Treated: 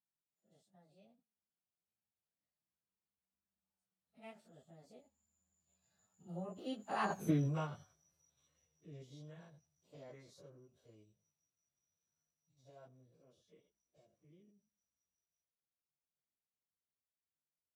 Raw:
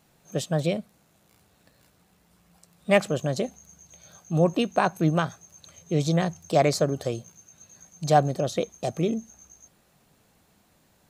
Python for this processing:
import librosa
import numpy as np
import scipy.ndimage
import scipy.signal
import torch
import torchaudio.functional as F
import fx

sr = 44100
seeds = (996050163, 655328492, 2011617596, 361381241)

y = fx.spec_steps(x, sr, hold_ms=50)
y = fx.doppler_pass(y, sr, speed_mps=32, closest_m=2.3, pass_at_s=4.5)
y = fx.stretch_vocoder_free(y, sr, factor=1.6)
y = y * librosa.db_to_amplitude(-2.5)